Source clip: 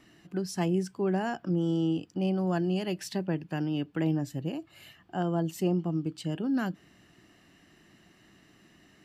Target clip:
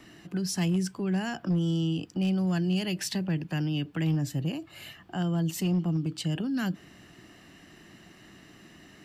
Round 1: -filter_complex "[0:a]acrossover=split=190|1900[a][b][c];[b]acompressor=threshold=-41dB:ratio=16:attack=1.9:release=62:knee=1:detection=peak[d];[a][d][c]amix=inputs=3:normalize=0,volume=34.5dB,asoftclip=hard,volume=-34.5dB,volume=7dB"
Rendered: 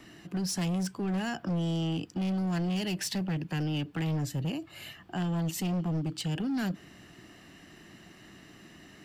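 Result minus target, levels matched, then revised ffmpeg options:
overloaded stage: distortion +18 dB
-filter_complex "[0:a]acrossover=split=190|1900[a][b][c];[b]acompressor=threshold=-41dB:ratio=16:attack=1.9:release=62:knee=1:detection=peak[d];[a][d][c]amix=inputs=3:normalize=0,volume=28dB,asoftclip=hard,volume=-28dB,volume=7dB"

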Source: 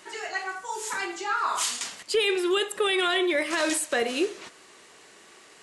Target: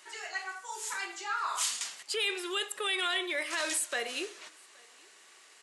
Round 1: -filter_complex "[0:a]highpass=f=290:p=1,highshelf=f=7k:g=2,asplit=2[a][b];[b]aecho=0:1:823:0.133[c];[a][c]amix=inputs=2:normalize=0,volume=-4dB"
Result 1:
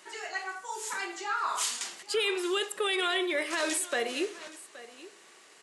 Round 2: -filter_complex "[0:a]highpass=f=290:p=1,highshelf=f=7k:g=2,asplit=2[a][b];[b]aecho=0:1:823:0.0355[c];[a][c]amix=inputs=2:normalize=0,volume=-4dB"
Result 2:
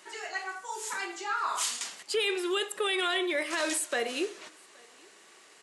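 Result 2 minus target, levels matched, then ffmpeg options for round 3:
250 Hz band +6.5 dB
-filter_complex "[0:a]highpass=f=1.1k:p=1,highshelf=f=7k:g=2,asplit=2[a][b];[b]aecho=0:1:823:0.0355[c];[a][c]amix=inputs=2:normalize=0,volume=-4dB"

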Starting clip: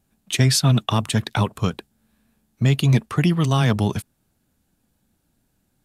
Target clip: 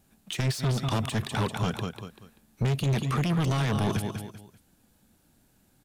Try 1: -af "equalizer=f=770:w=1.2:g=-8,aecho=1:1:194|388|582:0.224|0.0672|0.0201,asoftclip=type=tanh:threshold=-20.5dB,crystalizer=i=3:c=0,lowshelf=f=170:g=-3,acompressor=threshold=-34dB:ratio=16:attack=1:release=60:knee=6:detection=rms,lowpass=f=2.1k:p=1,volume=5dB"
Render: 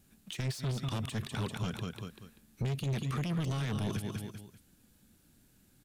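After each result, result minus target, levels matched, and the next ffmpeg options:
compressor: peak gain reduction +8 dB; 1000 Hz band -3.0 dB
-af "equalizer=f=770:w=1.2:g=-8,aecho=1:1:194|388|582:0.224|0.0672|0.0201,asoftclip=type=tanh:threshold=-20.5dB,crystalizer=i=3:c=0,lowshelf=f=170:g=-3,acompressor=threshold=-25.5dB:ratio=16:attack=1:release=60:knee=6:detection=rms,lowpass=f=2.1k:p=1,volume=5dB"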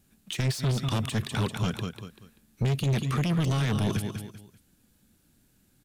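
1000 Hz band -3.5 dB
-af "aecho=1:1:194|388|582:0.224|0.0672|0.0201,asoftclip=type=tanh:threshold=-20.5dB,crystalizer=i=3:c=0,lowshelf=f=170:g=-3,acompressor=threshold=-25.5dB:ratio=16:attack=1:release=60:knee=6:detection=rms,lowpass=f=2.1k:p=1,volume=5dB"

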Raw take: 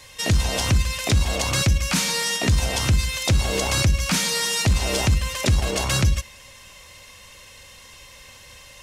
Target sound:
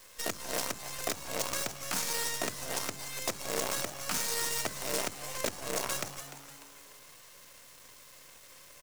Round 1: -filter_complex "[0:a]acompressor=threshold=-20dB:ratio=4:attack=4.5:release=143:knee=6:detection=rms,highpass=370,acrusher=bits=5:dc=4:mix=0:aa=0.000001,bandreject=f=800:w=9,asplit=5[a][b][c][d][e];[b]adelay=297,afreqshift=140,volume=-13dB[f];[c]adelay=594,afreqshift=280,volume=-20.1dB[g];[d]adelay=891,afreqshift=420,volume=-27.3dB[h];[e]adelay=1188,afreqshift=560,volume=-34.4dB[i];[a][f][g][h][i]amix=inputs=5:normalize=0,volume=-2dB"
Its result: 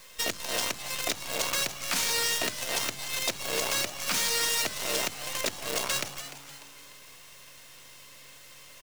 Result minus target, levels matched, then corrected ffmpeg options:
4000 Hz band +3.0 dB
-filter_complex "[0:a]acompressor=threshold=-20dB:ratio=4:attack=4.5:release=143:knee=6:detection=rms,highpass=370,equalizer=f=3.1k:w=1.1:g=-11,acrusher=bits=5:dc=4:mix=0:aa=0.000001,bandreject=f=800:w=9,asplit=5[a][b][c][d][e];[b]adelay=297,afreqshift=140,volume=-13dB[f];[c]adelay=594,afreqshift=280,volume=-20.1dB[g];[d]adelay=891,afreqshift=420,volume=-27.3dB[h];[e]adelay=1188,afreqshift=560,volume=-34.4dB[i];[a][f][g][h][i]amix=inputs=5:normalize=0,volume=-2dB"

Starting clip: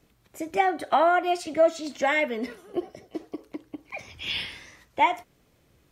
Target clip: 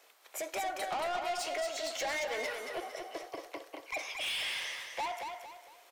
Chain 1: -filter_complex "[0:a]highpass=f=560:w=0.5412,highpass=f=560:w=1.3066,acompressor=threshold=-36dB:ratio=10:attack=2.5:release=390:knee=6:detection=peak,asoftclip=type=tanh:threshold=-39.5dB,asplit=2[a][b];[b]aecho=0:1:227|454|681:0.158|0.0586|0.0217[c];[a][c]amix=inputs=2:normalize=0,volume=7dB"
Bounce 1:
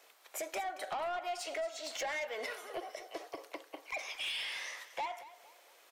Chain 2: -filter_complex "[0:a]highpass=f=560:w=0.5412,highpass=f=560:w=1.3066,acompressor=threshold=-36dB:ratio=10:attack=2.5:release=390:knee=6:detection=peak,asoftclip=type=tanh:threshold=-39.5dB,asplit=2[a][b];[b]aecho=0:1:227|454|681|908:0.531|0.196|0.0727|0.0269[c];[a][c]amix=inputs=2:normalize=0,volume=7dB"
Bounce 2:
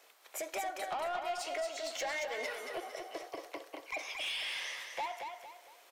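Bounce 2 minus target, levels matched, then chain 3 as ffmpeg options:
compressor: peak gain reduction +6 dB
-filter_complex "[0:a]highpass=f=560:w=0.5412,highpass=f=560:w=1.3066,acompressor=threshold=-29.5dB:ratio=10:attack=2.5:release=390:knee=6:detection=peak,asoftclip=type=tanh:threshold=-39.5dB,asplit=2[a][b];[b]aecho=0:1:227|454|681|908:0.531|0.196|0.0727|0.0269[c];[a][c]amix=inputs=2:normalize=0,volume=7dB"

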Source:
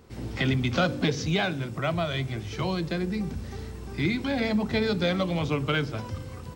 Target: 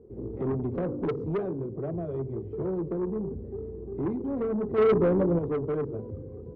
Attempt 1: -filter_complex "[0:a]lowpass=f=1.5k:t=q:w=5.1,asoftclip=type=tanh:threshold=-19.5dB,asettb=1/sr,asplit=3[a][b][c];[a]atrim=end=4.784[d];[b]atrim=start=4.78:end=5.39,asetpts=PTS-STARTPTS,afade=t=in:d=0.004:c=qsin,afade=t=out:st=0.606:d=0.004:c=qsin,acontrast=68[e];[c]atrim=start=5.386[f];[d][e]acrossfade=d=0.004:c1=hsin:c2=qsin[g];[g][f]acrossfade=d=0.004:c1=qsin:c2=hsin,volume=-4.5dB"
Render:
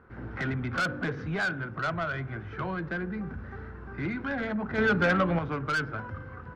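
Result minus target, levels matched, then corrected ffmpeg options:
2000 Hz band +19.5 dB
-filter_complex "[0:a]lowpass=f=420:t=q:w=5.1,asoftclip=type=tanh:threshold=-19.5dB,asettb=1/sr,asplit=3[a][b][c];[a]atrim=end=4.784[d];[b]atrim=start=4.78:end=5.39,asetpts=PTS-STARTPTS,afade=t=in:d=0.004:c=qsin,afade=t=out:st=0.606:d=0.004:c=qsin,acontrast=68[e];[c]atrim=start=5.386[f];[d][e]acrossfade=d=0.004:c1=hsin:c2=qsin[g];[g][f]acrossfade=d=0.004:c1=qsin:c2=hsin,volume=-4.5dB"

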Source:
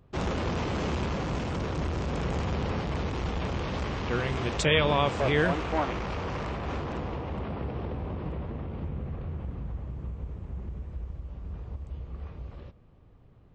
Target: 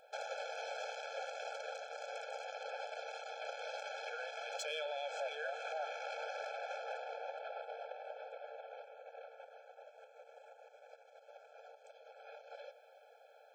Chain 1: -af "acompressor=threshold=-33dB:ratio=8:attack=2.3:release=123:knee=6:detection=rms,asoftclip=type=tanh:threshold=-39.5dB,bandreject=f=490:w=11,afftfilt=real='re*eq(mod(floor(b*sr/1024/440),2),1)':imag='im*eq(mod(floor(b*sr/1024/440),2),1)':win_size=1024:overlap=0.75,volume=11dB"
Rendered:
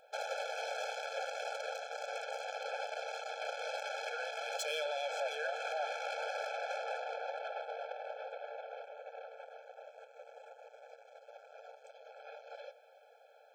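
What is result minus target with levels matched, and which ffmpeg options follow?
compressor: peak gain reduction -7 dB
-af "acompressor=threshold=-41dB:ratio=8:attack=2.3:release=123:knee=6:detection=rms,asoftclip=type=tanh:threshold=-39.5dB,bandreject=f=490:w=11,afftfilt=real='re*eq(mod(floor(b*sr/1024/440),2),1)':imag='im*eq(mod(floor(b*sr/1024/440),2),1)':win_size=1024:overlap=0.75,volume=11dB"

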